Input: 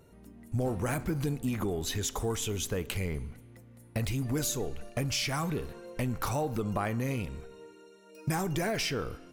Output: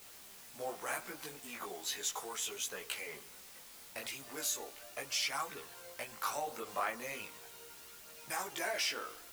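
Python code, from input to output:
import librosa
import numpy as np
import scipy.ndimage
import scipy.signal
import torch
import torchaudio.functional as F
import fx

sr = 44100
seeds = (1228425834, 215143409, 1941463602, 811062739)

y = scipy.signal.sosfilt(scipy.signal.butter(2, 730.0, 'highpass', fs=sr, output='sos'), x)
y = fx.rider(y, sr, range_db=3, speed_s=2.0)
y = fx.dmg_noise_colour(y, sr, seeds[0], colour='white', level_db=-51.0)
y = fx.chorus_voices(y, sr, voices=2, hz=0.37, base_ms=18, depth_ms=3.8, mix_pct=50)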